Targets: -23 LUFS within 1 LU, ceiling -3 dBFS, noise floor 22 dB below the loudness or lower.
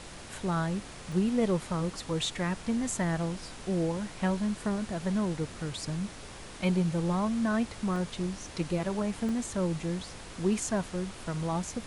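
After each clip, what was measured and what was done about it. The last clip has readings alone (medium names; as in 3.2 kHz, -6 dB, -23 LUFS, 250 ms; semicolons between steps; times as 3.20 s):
dropouts 3; longest dropout 1.3 ms; noise floor -45 dBFS; noise floor target -54 dBFS; loudness -31.5 LUFS; peak level -14.5 dBFS; loudness target -23.0 LUFS
-> interpolate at 1.12/7.96/9.29 s, 1.3 ms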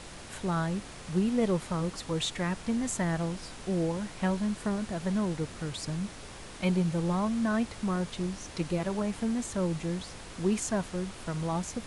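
dropouts 0; noise floor -45 dBFS; noise floor target -54 dBFS
-> noise print and reduce 9 dB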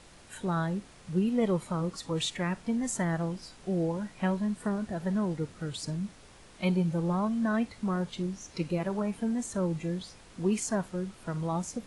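noise floor -54 dBFS; loudness -31.5 LUFS; peak level -14.5 dBFS; loudness target -23.0 LUFS
-> trim +8.5 dB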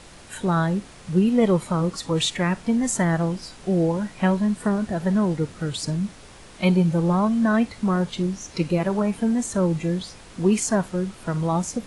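loudness -23.0 LUFS; peak level -6.0 dBFS; noise floor -45 dBFS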